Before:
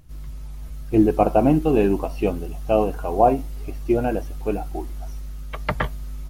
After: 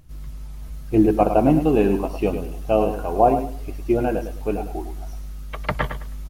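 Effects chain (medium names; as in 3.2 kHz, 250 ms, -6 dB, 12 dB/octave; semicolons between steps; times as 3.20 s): feedback delay 105 ms, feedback 24%, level -9 dB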